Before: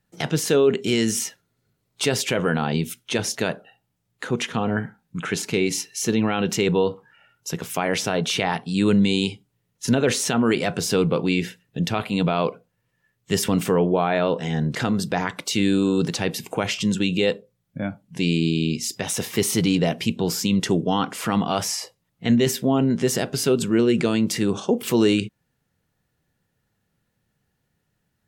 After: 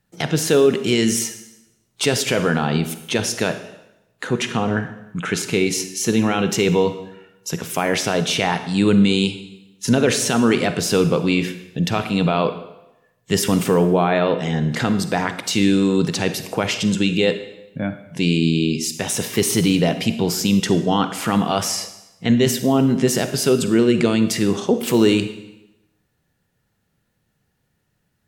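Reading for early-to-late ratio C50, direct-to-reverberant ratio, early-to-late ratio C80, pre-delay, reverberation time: 10.5 dB, 10.0 dB, 13.0 dB, 36 ms, 0.90 s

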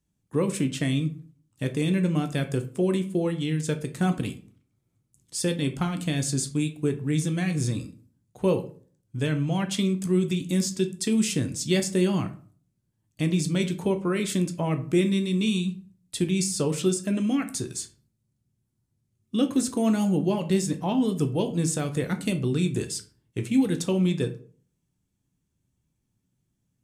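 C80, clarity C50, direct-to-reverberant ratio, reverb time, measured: 19.0 dB, 14.0 dB, 6.5 dB, 0.45 s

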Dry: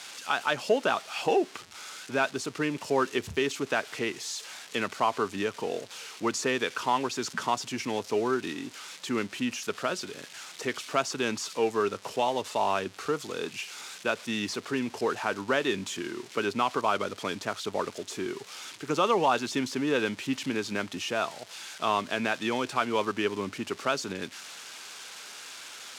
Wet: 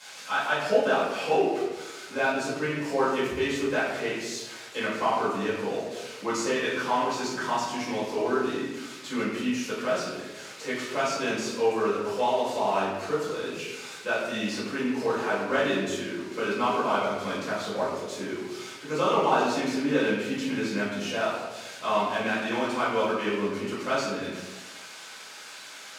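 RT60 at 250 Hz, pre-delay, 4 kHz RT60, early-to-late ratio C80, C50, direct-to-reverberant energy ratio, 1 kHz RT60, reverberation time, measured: 1.2 s, 4 ms, 0.70 s, 3.0 dB, 1.0 dB, −11.5 dB, 1.0 s, 1.2 s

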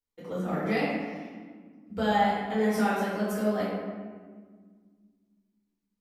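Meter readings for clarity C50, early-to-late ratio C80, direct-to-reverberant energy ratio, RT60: −2.0 dB, 1.0 dB, −11.0 dB, 1.7 s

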